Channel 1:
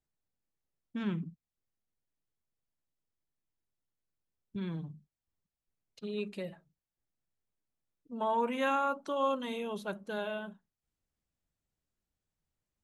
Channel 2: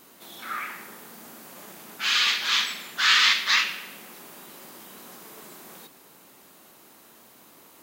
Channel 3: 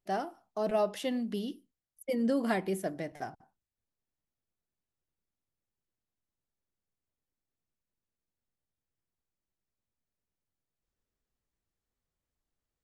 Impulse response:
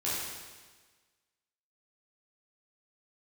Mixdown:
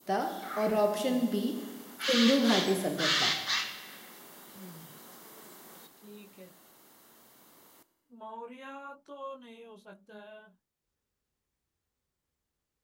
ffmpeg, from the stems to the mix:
-filter_complex "[0:a]flanger=delay=16.5:depth=5:speed=0.86,volume=0.316[s0];[1:a]bandreject=f=2500:w=8.4,volume=0.473,asplit=2[s1][s2];[s2]volume=0.1[s3];[2:a]highpass=42,bandreject=f=670:w=14,volume=1.12,asplit=2[s4][s5];[s5]volume=0.376[s6];[3:a]atrim=start_sample=2205[s7];[s3][s6]amix=inputs=2:normalize=0[s8];[s8][s7]afir=irnorm=-1:irlink=0[s9];[s0][s1][s4][s9]amix=inputs=4:normalize=0,adynamicequalizer=threshold=0.00708:dfrequency=1800:dqfactor=0.78:tfrequency=1800:tqfactor=0.78:attack=5:release=100:ratio=0.375:range=2.5:mode=cutabove:tftype=bell"

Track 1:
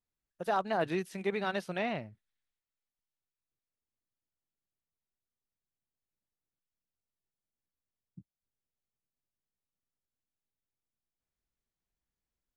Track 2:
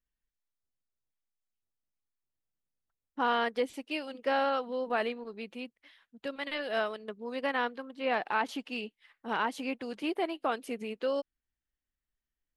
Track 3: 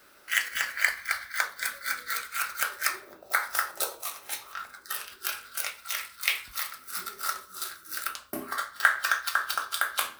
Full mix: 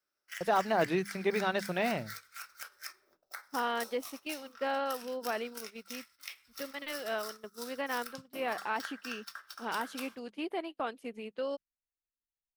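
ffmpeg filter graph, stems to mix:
-filter_complex "[0:a]agate=range=0.0224:threshold=0.00631:ratio=3:detection=peak,volume=1.33[s0];[1:a]adelay=350,volume=0.596[s1];[2:a]agate=range=0.224:threshold=0.00447:ratio=16:detection=peak,equalizer=f=5400:w=5.8:g=11.5,acompressor=threshold=0.0224:ratio=4,volume=0.355[s2];[s0][s1][s2]amix=inputs=3:normalize=0,bandreject=f=50:t=h:w=6,bandreject=f=100:t=h:w=6,bandreject=f=150:t=h:w=6,bandreject=f=200:t=h:w=6,agate=range=0.316:threshold=0.00631:ratio=16:detection=peak"

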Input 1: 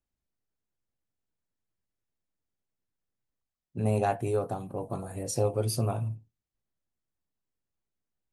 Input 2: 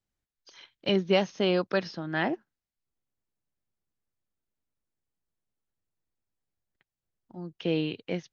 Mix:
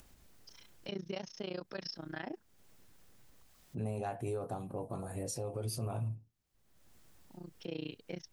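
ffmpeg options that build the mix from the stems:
-filter_complex "[0:a]acompressor=mode=upward:threshold=0.0224:ratio=2.5,volume=0.631[s0];[1:a]equalizer=f=5400:w=5:g=14.5,tremolo=f=29:d=0.947,volume=0.501,asplit=2[s1][s2];[s2]apad=whole_len=366925[s3];[s0][s3]sidechaincompress=threshold=0.00447:ratio=6:attack=9.6:release=333[s4];[s4][s1]amix=inputs=2:normalize=0,alimiter=level_in=1.78:limit=0.0631:level=0:latency=1:release=78,volume=0.562"

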